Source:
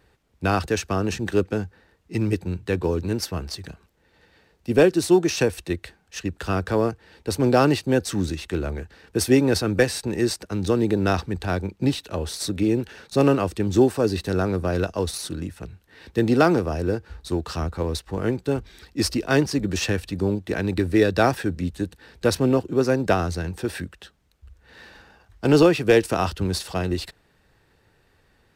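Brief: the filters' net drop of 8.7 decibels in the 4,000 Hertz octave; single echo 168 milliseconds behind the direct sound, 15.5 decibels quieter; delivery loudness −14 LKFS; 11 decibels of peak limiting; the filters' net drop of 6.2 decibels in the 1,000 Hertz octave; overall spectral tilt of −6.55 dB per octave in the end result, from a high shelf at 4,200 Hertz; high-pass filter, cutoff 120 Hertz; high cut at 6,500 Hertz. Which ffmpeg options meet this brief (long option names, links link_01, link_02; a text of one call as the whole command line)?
ffmpeg -i in.wav -af "highpass=120,lowpass=6500,equalizer=frequency=1000:width_type=o:gain=-8.5,equalizer=frequency=4000:width_type=o:gain=-5,highshelf=frequency=4200:gain=-7.5,alimiter=limit=-17.5dB:level=0:latency=1,aecho=1:1:168:0.168,volume=15dB" out.wav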